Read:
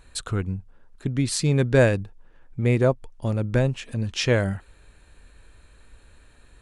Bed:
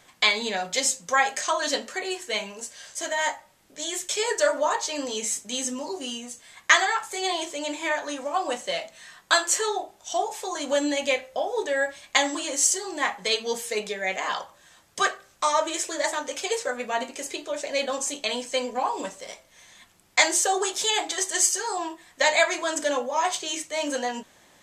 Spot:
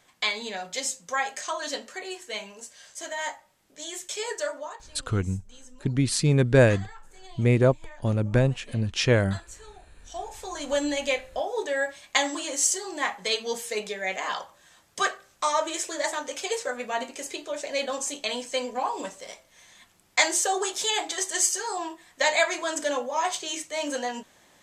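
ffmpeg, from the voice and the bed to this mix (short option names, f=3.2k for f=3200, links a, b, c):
-filter_complex "[0:a]adelay=4800,volume=0dB[a];[1:a]volume=14.5dB,afade=t=out:st=4.29:d=0.55:silence=0.149624,afade=t=in:st=9.9:d=0.86:silence=0.0944061[b];[a][b]amix=inputs=2:normalize=0"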